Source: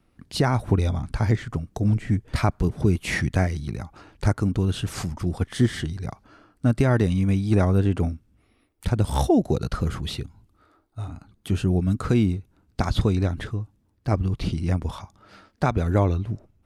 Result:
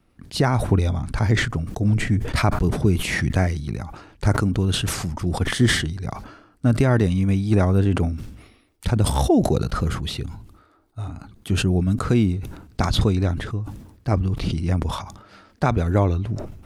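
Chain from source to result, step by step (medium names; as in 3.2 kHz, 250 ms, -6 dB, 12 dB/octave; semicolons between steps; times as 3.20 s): 8.13–8.87 s: peaking EQ 4.6 kHz +4.5 dB 1.7 oct; decay stretcher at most 69 dB/s; trim +1.5 dB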